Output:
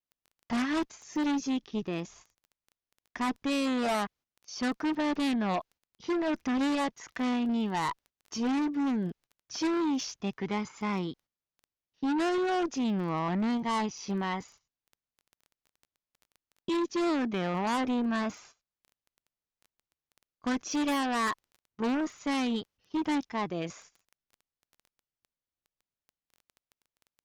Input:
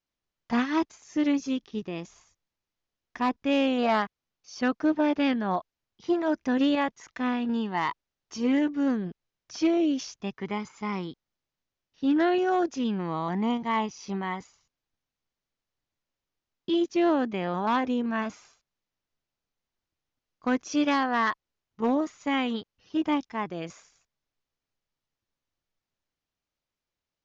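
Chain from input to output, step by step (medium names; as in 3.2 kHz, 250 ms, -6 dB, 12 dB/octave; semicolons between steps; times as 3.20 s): Chebyshev shaper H 5 -11 dB, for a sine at -16.5 dBFS; gate -49 dBFS, range -12 dB; crackle 11 per s -38 dBFS; trim -5.5 dB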